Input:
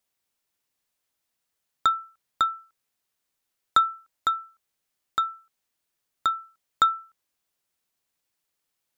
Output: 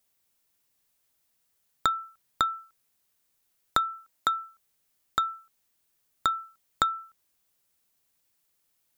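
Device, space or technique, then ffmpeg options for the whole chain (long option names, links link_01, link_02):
ASMR close-microphone chain: -filter_complex "[0:a]asettb=1/sr,asplit=3[link_01][link_02][link_03];[link_01]atrim=end=3.924[link_04];[link_02]atrim=start=3.92:end=4.42,asetpts=PTS-STARTPTS,afade=type=in:duration=0.004:curve=qsin,afade=type=out:start_time=0.496:duration=0.004:curve=qsin,highpass=110[link_05];[link_03]atrim=start=4.416[link_06];[link_04][link_05]acrossfade=duration=0.004:curve1=hsin:curve2=qsin[link_07];[link_07][link_06]acrossfade=duration=0.004:curve1=qsin:curve2=hsin,lowshelf=frequency=240:gain=5,acompressor=threshold=-24dB:ratio=6,highshelf=frequency=8300:gain=7.5,volume=2dB"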